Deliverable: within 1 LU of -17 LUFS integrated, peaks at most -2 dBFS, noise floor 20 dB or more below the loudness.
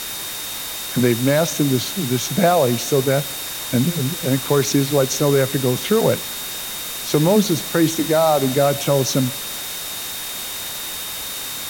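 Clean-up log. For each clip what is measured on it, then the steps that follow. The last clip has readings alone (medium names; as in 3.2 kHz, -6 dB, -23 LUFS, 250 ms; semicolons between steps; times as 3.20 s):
steady tone 3.7 kHz; tone level -33 dBFS; noise floor -29 dBFS; noise floor target -40 dBFS; loudness -19.5 LUFS; peak level -4.0 dBFS; loudness target -17.0 LUFS
-> band-stop 3.7 kHz, Q 30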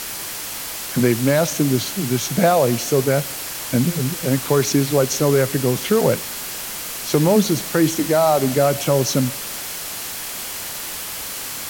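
steady tone not found; noise floor -30 dBFS; noise floor target -40 dBFS
-> noise print and reduce 10 dB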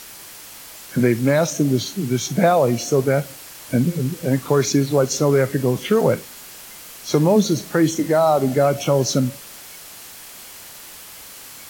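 noise floor -40 dBFS; loudness -19.0 LUFS; peak level -4.5 dBFS; loudness target -17.0 LUFS
-> trim +2 dB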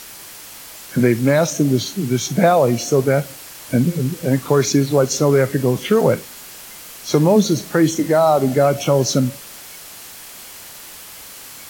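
loudness -17.0 LUFS; peak level -2.5 dBFS; noise floor -38 dBFS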